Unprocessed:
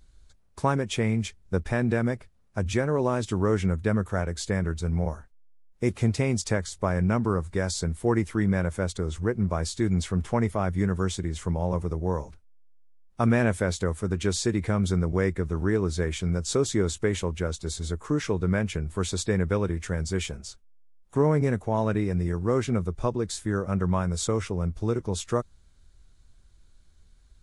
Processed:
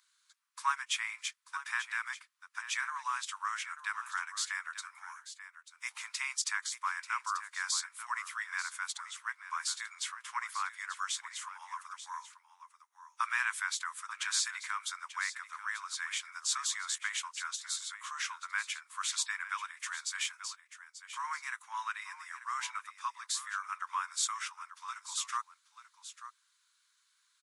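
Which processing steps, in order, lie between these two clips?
steep high-pass 1 kHz 72 dB/octave; delay 888 ms -12.5 dB

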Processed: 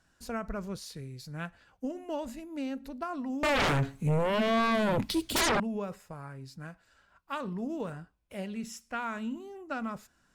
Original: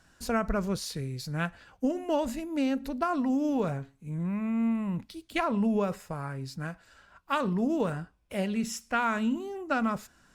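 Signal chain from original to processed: 3.43–5.60 s: sine folder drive 19 dB, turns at -15.5 dBFS; trim -7.5 dB

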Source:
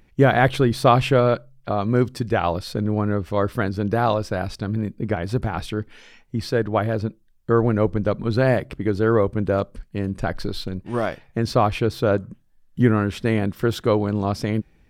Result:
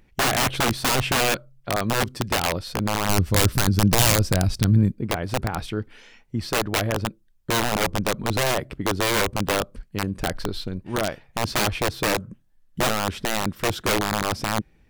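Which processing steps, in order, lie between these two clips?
integer overflow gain 13.5 dB; 3.09–4.92 s: tone controls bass +11 dB, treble +8 dB; trim -1.5 dB

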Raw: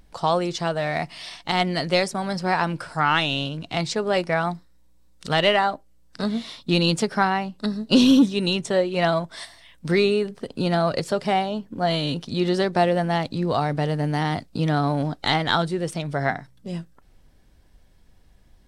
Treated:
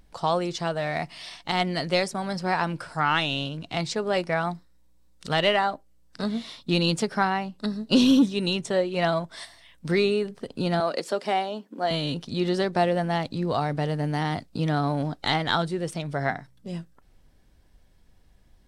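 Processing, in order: 10.80–11.91 s: high-pass 240 Hz 24 dB/octave; trim -3 dB

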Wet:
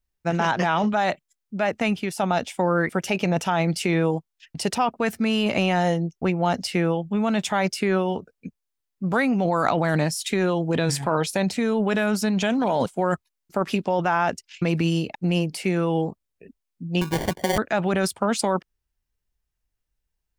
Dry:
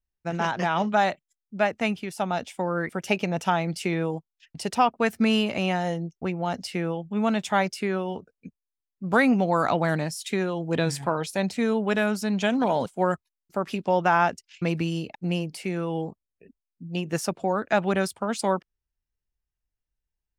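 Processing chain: in parallel at +2.5 dB: compressor with a negative ratio -26 dBFS, ratio -0.5; 17.01–17.58 s: on the sum: sample-rate reducer 1.3 kHz, jitter 0%; trim -3 dB

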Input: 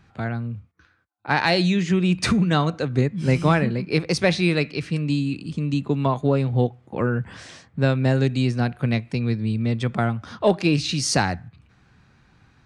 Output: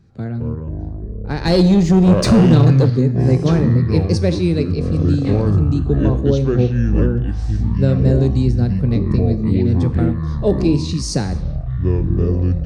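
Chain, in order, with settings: ever faster or slower copies 124 ms, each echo -7 st, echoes 3; high-order bell 1.5 kHz -13 dB 2.6 oct; 1.45–2.90 s: waveshaping leveller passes 2; treble shelf 4.2 kHz -9 dB; gated-style reverb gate 300 ms falling, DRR 11.5 dB; trim +4 dB

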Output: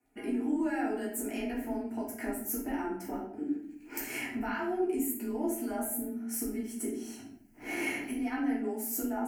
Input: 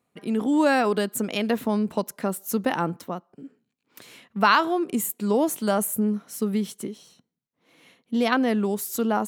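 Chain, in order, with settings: recorder AGC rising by 22 dB/s; bass shelf 140 Hz +11 dB; compression 5:1, threshold -31 dBFS, peak gain reduction 18 dB; static phaser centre 740 Hz, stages 8; crackle 10 per s -55 dBFS; reverberation RT60 0.60 s, pre-delay 4 ms, DRR -7 dB; frequency shift +21 Hz; trim -6 dB

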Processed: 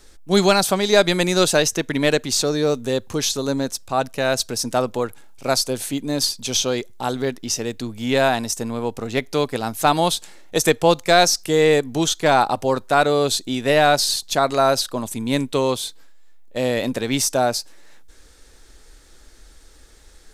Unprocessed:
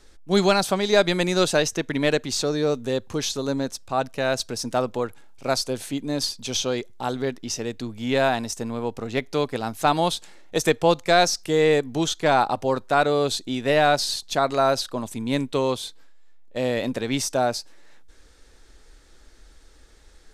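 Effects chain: treble shelf 8.2 kHz +10 dB; trim +3 dB

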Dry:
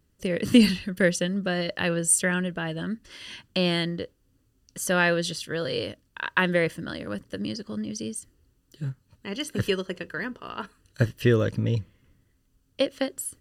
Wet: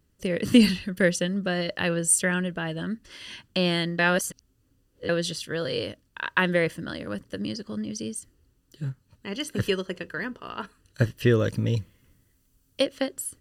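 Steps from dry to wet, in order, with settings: 3.99–5.09 s: reverse; 11.44–12.84 s: treble shelf 6 kHz +11 dB

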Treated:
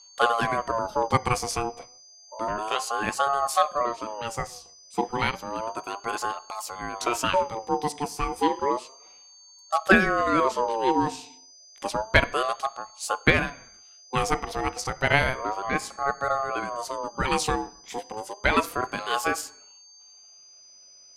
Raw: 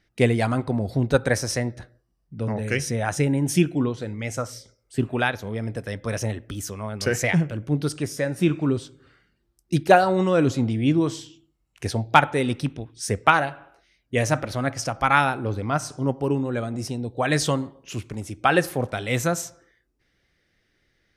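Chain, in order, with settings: whistle 5.5 kHz -46 dBFS; ring modulator with a swept carrier 780 Hz, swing 25%, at 0.31 Hz

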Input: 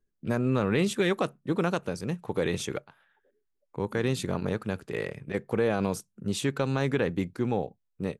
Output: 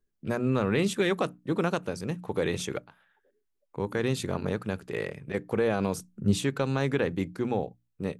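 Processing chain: 5.98–6.42 s: bass shelf 270 Hz +10.5 dB; hum notches 60/120/180/240/300 Hz

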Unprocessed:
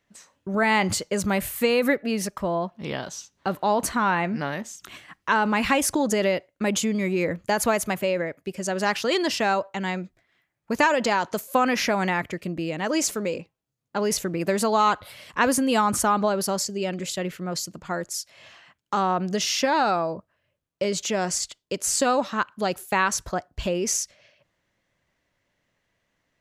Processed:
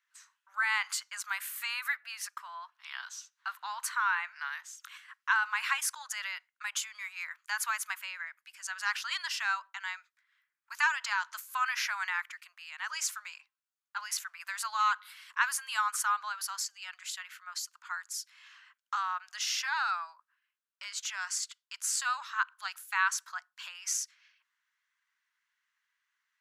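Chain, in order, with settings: steep high-pass 1 kHz 48 dB/octave; peaking EQ 1.5 kHz +6 dB 0.39 oct; trim -7 dB

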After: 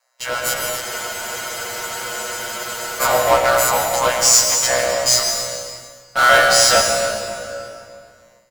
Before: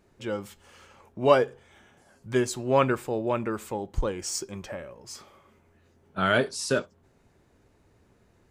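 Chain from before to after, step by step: partials quantised in pitch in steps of 2 st; Chebyshev high-pass 530 Hz, order 8; comb 3 ms, depth 76%; ring modulator 62 Hz; in parallel at -10 dB: fuzz box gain 42 dB, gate -47 dBFS; on the sum: echo whose repeats swap between lows and highs 142 ms, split 860 Hz, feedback 51%, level -10 dB; reverberation RT60 2.2 s, pre-delay 99 ms, DRR 2.5 dB; level rider gain up to 10 dB; spectral freeze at 0.83 s, 2.17 s

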